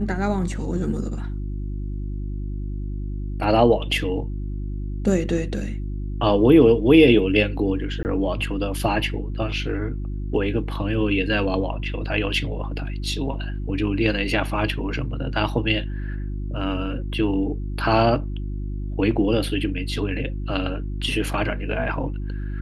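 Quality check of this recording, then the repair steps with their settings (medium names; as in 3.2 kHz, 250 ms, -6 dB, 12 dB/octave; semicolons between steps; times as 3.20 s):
hum 50 Hz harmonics 7 -28 dBFS
8.03–8.05 s: dropout 19 ms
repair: de-hum 50 Hz, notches 7; interpolate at 8.03 s, 19 ms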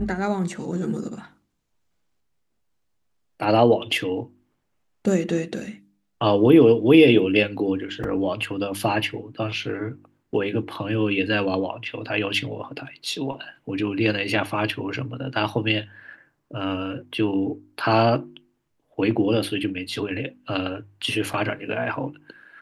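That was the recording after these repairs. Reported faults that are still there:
nothing left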